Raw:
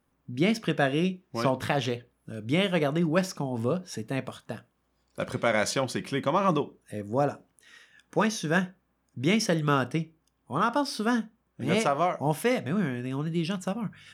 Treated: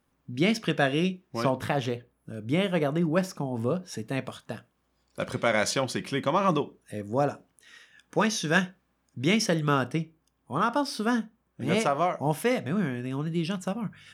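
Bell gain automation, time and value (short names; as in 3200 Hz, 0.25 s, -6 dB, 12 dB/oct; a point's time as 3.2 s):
bell 4200 Hz 2.3 oct
1.05 s +3 dB
1.75 s -4.5 dB
3.53 s -4.5 dB
4.17 s +2 dB
8.19 s +2 dB
8.59 s +8 dB
9.71 s -0.5 dB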